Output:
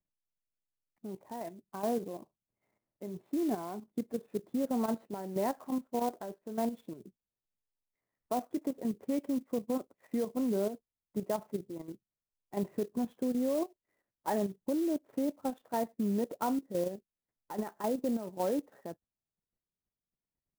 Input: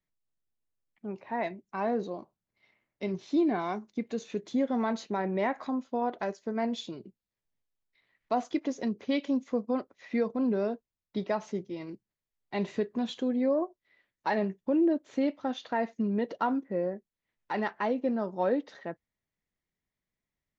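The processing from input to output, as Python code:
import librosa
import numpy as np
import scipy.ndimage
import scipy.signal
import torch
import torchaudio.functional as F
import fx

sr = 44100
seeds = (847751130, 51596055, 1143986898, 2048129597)

y = scipy.signal.sosfilt(scipy.signal.butter(2, 1000.0, 'lowpass', fs=sr, output='sos'), x)
y = fx.level_steps(y, sr, step_db=10)
y = fx.clock_jitter(y, sr, seeds[0], jitter_ms=0.038)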